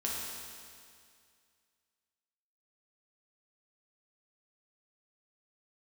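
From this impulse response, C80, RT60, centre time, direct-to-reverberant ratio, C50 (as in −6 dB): 0.5 dB, 2.2 s, 123 ms, −5.0 dB, −1.0 dB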